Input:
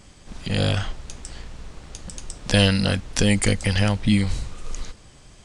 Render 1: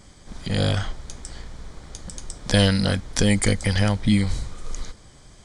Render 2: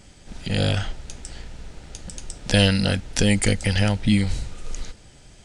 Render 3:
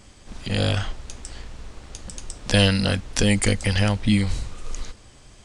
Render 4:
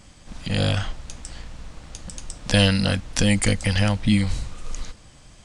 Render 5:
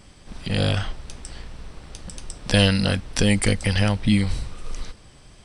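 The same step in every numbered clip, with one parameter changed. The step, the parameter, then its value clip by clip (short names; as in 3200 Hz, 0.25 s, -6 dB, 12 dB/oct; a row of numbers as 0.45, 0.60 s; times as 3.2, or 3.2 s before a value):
notch, frequency: 2700, 1100, 160, 400, 6800 Hz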